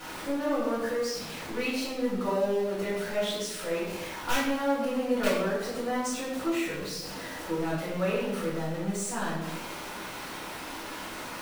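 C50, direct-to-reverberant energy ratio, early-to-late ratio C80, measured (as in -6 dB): 1.5 dB, -12.5 dB, 4.0 dB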